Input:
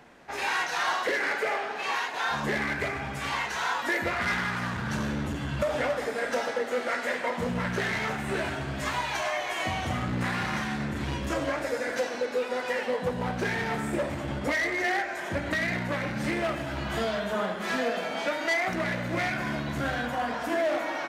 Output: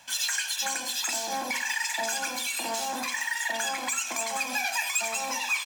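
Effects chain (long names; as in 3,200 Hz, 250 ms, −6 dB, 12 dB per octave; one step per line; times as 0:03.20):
comb filter 4.5 ms, depth 71%
repeating echo 422 ms, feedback 53%, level −22.5 dB
change of speed 3.73×
level −2.5 dB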